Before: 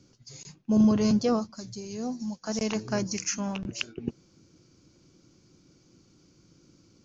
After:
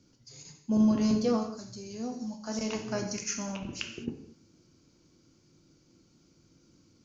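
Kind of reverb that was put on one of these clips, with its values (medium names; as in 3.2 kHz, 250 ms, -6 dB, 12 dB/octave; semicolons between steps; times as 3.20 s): gated-style reverb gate 260 ms falling, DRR 2.5 dB; trim -5 dB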